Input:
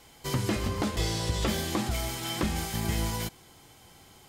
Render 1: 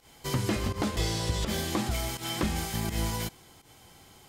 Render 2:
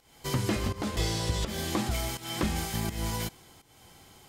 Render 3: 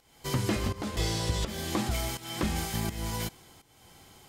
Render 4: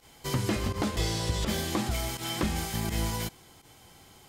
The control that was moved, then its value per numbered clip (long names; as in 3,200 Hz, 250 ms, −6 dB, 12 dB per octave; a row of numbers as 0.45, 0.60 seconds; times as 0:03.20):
fake sidechain pumping, release: 113, 298, 438, 69 milliseconds